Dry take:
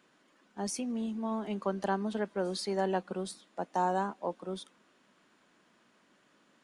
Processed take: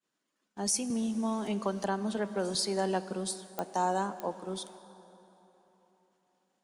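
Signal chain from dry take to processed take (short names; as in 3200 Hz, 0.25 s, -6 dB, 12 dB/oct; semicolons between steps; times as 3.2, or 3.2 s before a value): expander -55 dBFS; tone controls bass +1 dB, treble +10 dB; plate-style reverb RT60 3.8 s, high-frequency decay 0.6×, DRR 13.5 dB; pops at 3.59/4.2, -19 dBFS; 0.9–2.55 three-band squash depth 70%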